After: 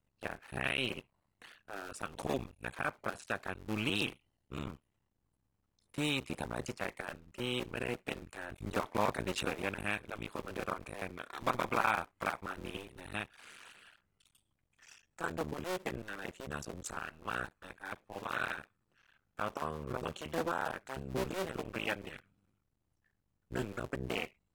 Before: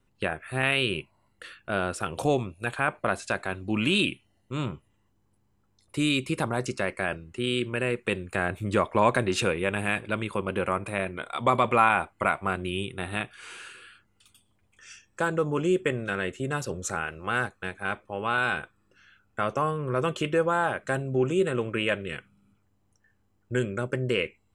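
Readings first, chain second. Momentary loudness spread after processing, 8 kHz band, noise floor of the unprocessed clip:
12 LU, -8.5 dB, -69 dBFS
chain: cycle switcher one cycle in 2, muted; trim -8.5 dB; AAC 48 kbps 48 kHz

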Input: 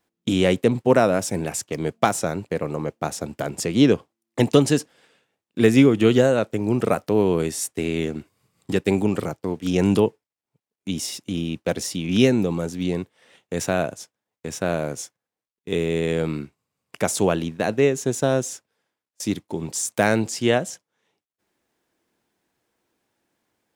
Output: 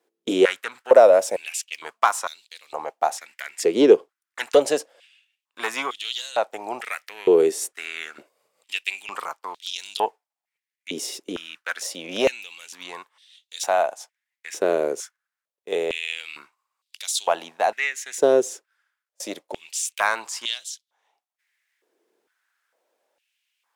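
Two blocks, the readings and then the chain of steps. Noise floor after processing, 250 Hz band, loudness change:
under -85 dBFS, -9.5 dB, -1.0 dB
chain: valve stage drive 6 dB, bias 0.2; step-sequenced high-pass 2.2 Hz 410–3700 Hz; trim -1.5 dB

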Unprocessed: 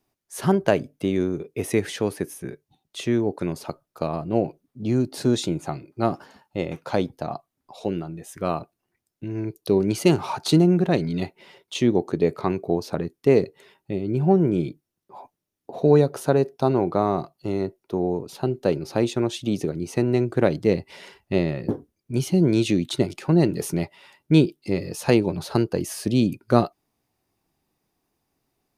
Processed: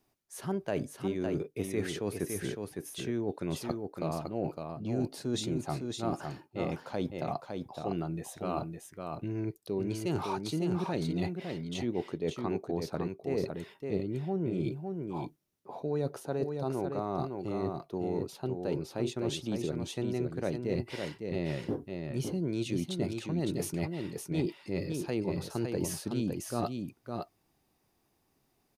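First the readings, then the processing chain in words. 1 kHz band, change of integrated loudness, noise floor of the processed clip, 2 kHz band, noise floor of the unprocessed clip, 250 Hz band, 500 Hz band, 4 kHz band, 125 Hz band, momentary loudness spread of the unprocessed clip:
-9.5 dB, -11.5 dB, -74 dBFS, -10.0 dB, -82 dBFS, -11.0 dB, -11.0 dB, -9.0 dB, -10.5 dB, 13 LU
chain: reverse; compression 5:1, threshold -31 dBFS, peak gain reduction 18.5 dB; reverse; delay 559 ms -5 dB

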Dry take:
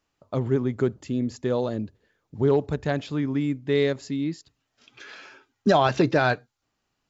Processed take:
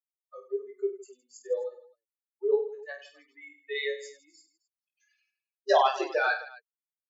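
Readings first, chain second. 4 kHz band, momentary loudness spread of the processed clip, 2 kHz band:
-3.5 dB, 22 LU, -2.0 dB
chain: expander on every frequency bin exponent 3; steep high-pass 390 Hz 72 dB/octave; on a send: reverse bouncing-ball echo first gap 20 ms, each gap 1.5×, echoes 5

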